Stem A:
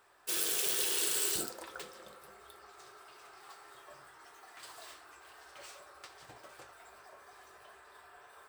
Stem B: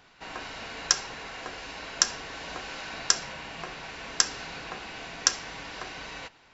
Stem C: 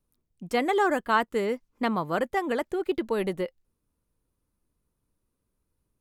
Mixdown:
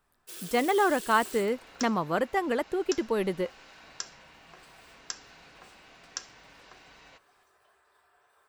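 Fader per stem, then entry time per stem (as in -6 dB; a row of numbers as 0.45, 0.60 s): -10.0, -14.5, -0.5 dB; 0.00, 0.90, 0.00 s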